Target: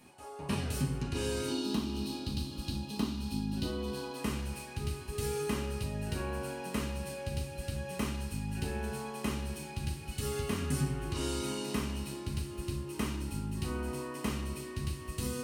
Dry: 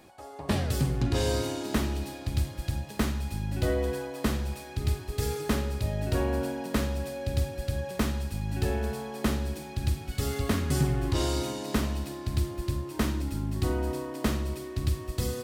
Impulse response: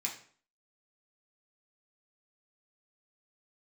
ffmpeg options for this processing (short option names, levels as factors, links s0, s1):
-filter_complex "[0:a]asettb=1/sr,asplit=3[s0][s1][s2];[s0]atrim=end=1.484[s3];[s1]atrim=start=1.48:end=4.17,asetpts=PTS-STARTPTS,afade=t=in:d=0.004:c=qsin,afade=t=out:st=2.686:d=0.004:c=qsin,equalizer=f=125:t=o:w=1:g=-4,equalizer=f=250:t=o:w=1:g=11,equalizer=f=500:t=o:w=1:g=-4,equalizer=f=1000:t=o:w=1:g=3,equalizer=f=2000:t=o:w=1:g=-11,equalizer=f=4000:t=o:w=1:g=12,equalizer=f=8000:t=o:w=1:g=-5[s4];[s2]atrim=start=4.166[s5];[s3][s4]acrossfade=d=0.004:c1=hsin:c2=qsin[s6];[s6][s5]acrossfade=d=0.004:c1=qsin:c2=hsin,acompressor=threshold=0.0447:ratio=6[s7];[1:a]atrim=start_sample=2205,asetrate=52920,aresample=44100[s8];[s7][s8]afir=irnorm=-1:irlink=0,volume=0.891"